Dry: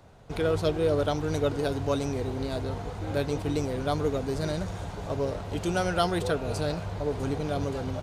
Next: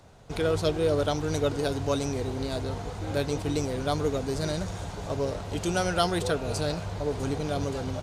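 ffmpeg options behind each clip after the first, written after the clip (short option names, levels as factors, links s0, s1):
-af "equalizer=f=6800:w=0.65:g=5.5"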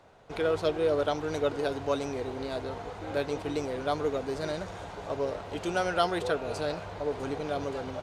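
-af "bass=f=250:g=-11,treble=f=4000:g=-11"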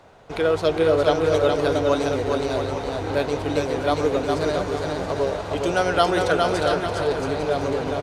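-af "aecho=1:1:410|676.5|849.7|962.3|1036:0.631|0.398|0.251|0.158|0.1,volume=2.24"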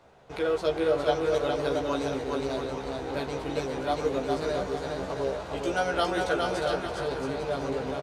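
-filter_complex "[0:a]asplit=2[s0][s1];[s1]adelay=15,volume=0.75[s2];[s0][s2]amix=inputs=2:normalize=0,volume=0.376"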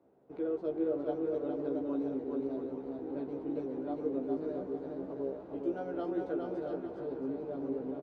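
-af "bandpass=f=300:t=q:w=2.5:csg=0"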